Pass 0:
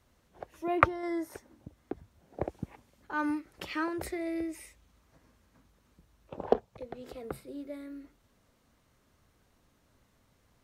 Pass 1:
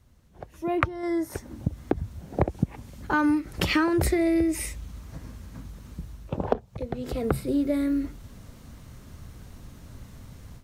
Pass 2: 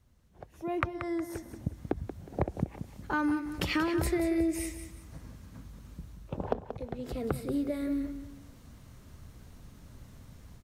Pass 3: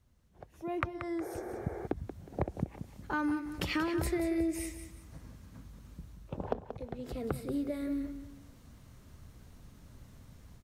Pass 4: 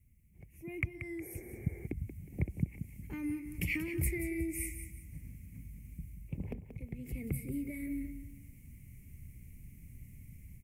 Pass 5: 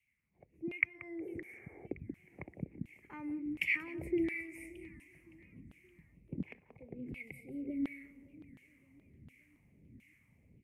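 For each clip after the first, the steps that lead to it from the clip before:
automatic gain control gain up to 15 dB; bass and treble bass +12 dB, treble +3 dB; downward compressor 6 to 1, threshold −20 dBFS, peak gain reduction 11.5 dB
repeating echo 182 ms, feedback 31%, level −10 dB; level −6.5 dB
healed spectral selection 0:01.24–0:01.84, 340–2,400 Hz after; level −3 dB
drawn EQ curve 160 Hz 0 dB, 330 Hz −9 dB, 670 Hz −23 dB, 1,500 Hz −28 dB, 2,200 Hz +6 dB, 3,700 Hz −24 dB, 11,000 Hz +5 dB; level +3 dB
auto-filter band-pass saw down 1.4 Hz 240–2,900 Hz; gain on a spectral selection 0:07.18–0:07.81, 820–1,900 Hz −29 dB; feedback echo with a swinging delay time 569 ms, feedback 47%, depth 198 cents, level −22 dB; level +8.5 dB

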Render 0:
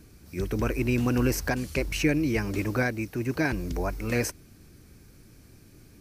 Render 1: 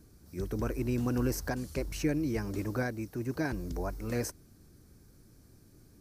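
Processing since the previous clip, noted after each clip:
parametric band 2,500 Hz −9.5 dB 0.89 octaves
level −5.5 dB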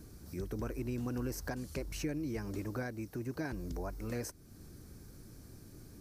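downward compressor 2 to 1, threshold −50 dBFS, peak gain reduction 13.5 dB
level +5.5 dB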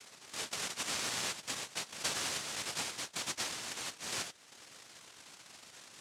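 cochlear-implant simulation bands 1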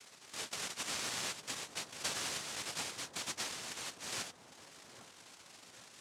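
delay with a low-pass on its return 804 ms, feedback 54%, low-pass 960 Hz, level −10.5 dB
level −2.5 dB

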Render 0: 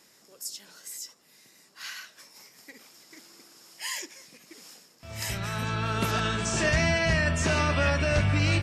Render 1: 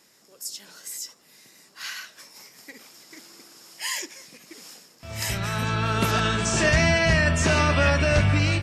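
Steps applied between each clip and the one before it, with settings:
automatic gain control gain up to 4.5 dB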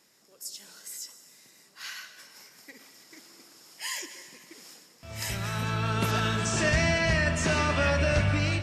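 convolution reverb RT60 2.1 s, pre-delay 98 ms, DRR 11 dB
level −5 dB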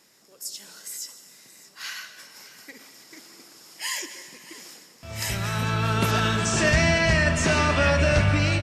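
single-tap delay 628 ms −18 dB
level +4.5 dB

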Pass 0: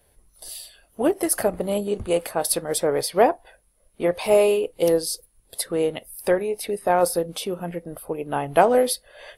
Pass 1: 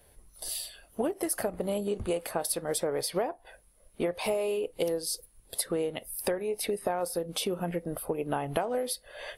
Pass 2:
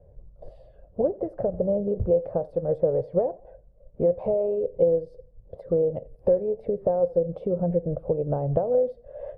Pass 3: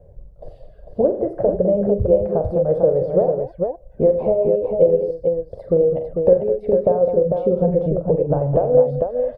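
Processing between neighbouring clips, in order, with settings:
downward compressor 12 to 1, threshold −28 dBFS, peak gain reduction 18 dB; level +1.5 dB
low-pass with resonance 540 Hz, resonance Q 4.9; low shelf with overshoot 200 Hz +10.5 dB, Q 1.5; feedback echo with a swinging delay time 87 ms, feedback 39%, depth 83 cents, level −23.5 dB; level −1 dB
reverb reduction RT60 0.72 s; on a send: multi-tap delay 44/84/113/144/207/448 ms −9/−13.5/−19/−18.5/−11.5/−5 dB; on the sum: level +6.5 dB

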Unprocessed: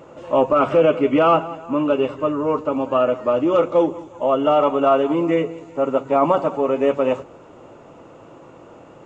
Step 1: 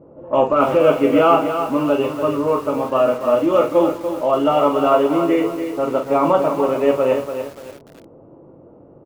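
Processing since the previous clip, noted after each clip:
ambience of single reflections 21 ms −8 dB, 46 ms −8 dB
low-pass that shuts in the quiet parts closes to 420 Hz, open at −15 dBFS
feedback echo at a low word length 289 ms, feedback 35%, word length 6 bits, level −8 dB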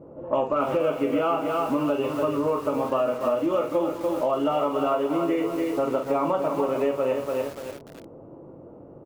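downward compressor, threshold −21 dBFS, peak gain reduction 12 dB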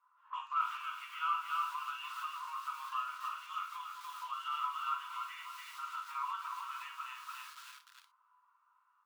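Chebyshev high-pass with heavy ripple 970 Hz, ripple 6 dB
reverb whose tail is shaped and stops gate 80 ms flat, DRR 7 dB
level −3.5 dB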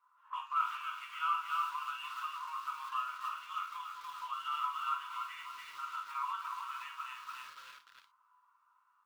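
running median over 5 samples
level +1 dB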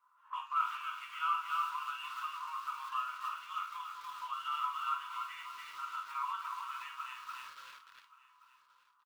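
single-tap delay 1,126 ms −19.5 dB

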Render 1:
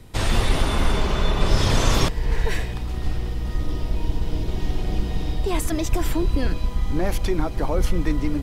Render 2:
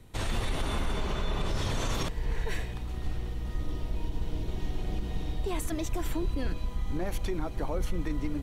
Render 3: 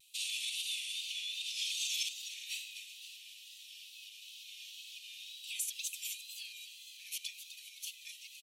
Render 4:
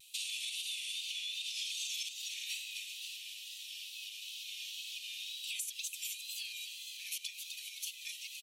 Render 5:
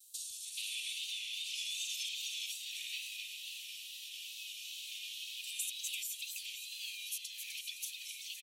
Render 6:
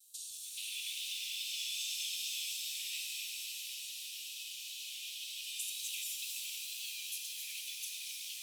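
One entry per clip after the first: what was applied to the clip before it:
notch filter 5,000 Hz, Q 9.9; brickwall limiter −12.5 dBFS, peak gain reduction 7.5 dB; level −8 dB
Chebyshev high-pass filter 2,500 Hz, order 6; echo with shifted repeats 257 ms, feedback 48%, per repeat +83 Hz, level −10.5 dB; tape wow and flutter 59 cents; level +4.5 dB
downward compressor 4 to 1, threshold −44 dBFS, peak gain reduction 11 dB; level +6 dB
three-band delay without the direct sound highs, lows, mids 310/430 ms, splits 1,600/4,800 Hz; level +1.5 dB
reverb with rising layers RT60 3.9 s, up +7 semitones, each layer −2 dB, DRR 1 dB; level −3 dB

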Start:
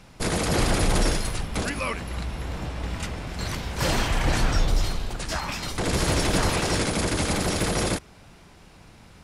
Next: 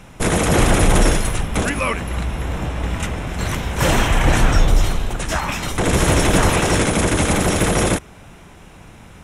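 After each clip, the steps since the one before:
parametric band 4,600 Hz −13.5 dB 0.33 octaves
level +8 dB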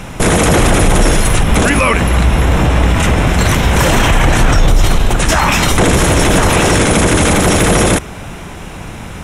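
boost into a limiter +15.5 dB
level −1 dB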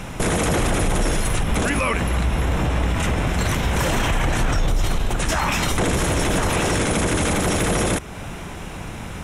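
downward compressor 1.5 to 1, threshold −22 dBFS, peak gain reduction 6 dB
level −4.5 dB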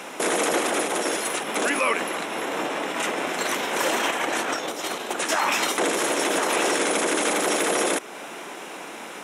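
high-pass filter 300 Hz 24 dB per octave

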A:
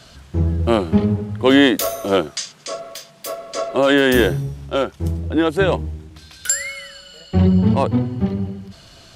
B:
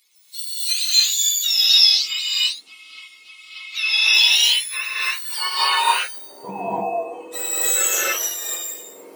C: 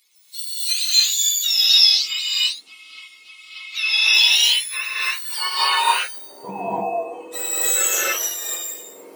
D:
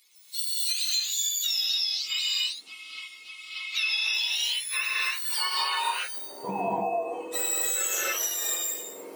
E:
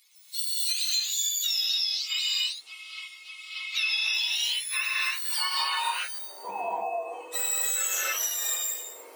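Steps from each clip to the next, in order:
frequency axis turned over on the octave scale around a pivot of 1,200 Hz; high-pass filter sweep 3,900 Hz → 530 Hz, 0:03.52–0:06.56; reverb whose tail is shaped and stops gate 330 ms rising, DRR −8 dB; level −7 dB
no processing that can be heard
downward compressor 16 to 1, threshold −24 dBFS, peak gain reduction 16 dB
high-pass filter 670 Hz 12 dB per octave; buffer that repeats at 0:05.25/0:06.15, samples 512, times 2

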